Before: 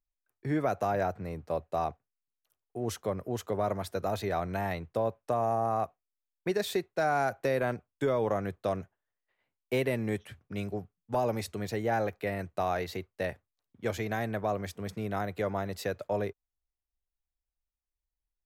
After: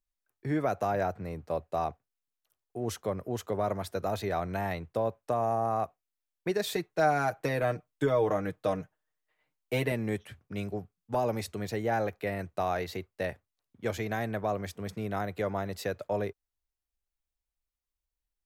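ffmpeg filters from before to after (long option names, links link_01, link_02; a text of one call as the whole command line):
ffmpeg -i in.wav -filter_complex "[0:a]asettb=1/sr,asplit=3[link_01][link_02][link_03];[link_01]atrim=end=6.634[link_04];[link_02]atrim=start=6.63:end=9.92,asetpts=PTS-STARTPTS,afade=type=in:duration=0.004:curve=qsin,afade=type=out:start_time=3.286:duration=0.004:curve=qsin,aecho=1:1:6.5:0.65,atrim=end_sample=145089[link_05];[link_03]atrim=start=9.916[link_06];[link_04][link_05]acrossfade=duration=0.004:curve1=hsin:curve2=qsin[link_07];[link_07][link_06]acrossfade=duration=0.004:curve1=qsin:curve2=hsin" out.wav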